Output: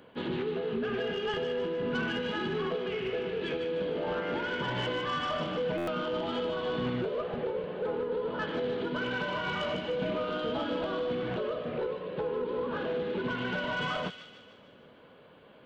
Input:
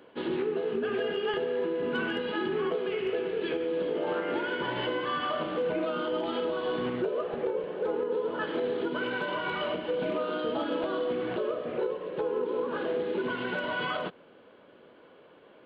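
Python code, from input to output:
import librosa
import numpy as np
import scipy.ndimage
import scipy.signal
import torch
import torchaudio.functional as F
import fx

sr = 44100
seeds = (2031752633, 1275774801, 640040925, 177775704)

y = fx.peak_eq(x, sr, hz=340.0, db=-6.5, octaves=0.56)
y = 10.0 ** (-24.5 / 20.0) * np.tanh(y / 10.0 ** (-24.5 / 20.0))
y = fx.bass_treble(y, sr, bass_db=8, treble_db=4)
y = fx.echo_wet_highpass(y, sr, ms=151, feedback_pct=53, hz=2600.0, wet_db=-5.0)
y = fx.buffer_glitch(y, sr, at_s=(5.77,), block=512, repeats=8)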